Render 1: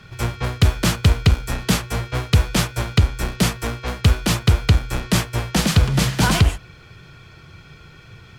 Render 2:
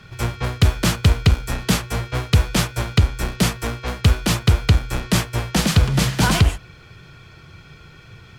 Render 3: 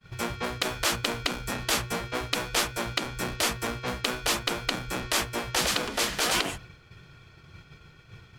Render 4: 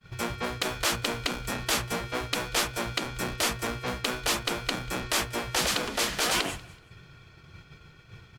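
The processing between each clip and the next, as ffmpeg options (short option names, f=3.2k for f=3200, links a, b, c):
-af anull
-af "afftfilt=real='re*lt(hypot(re,im),0.355)':imag='im*lt(hypot(re,im),0.355)':win_size=1024:overlap=0.75,agate=range=-33dB:threshold=-38dB:ratio=3:detection=peak,volume=-3dB"
-af "asoftclip=type=tanh:threshold=-13.5dB,aecho=1:1:189|378:0.0668|0.0247"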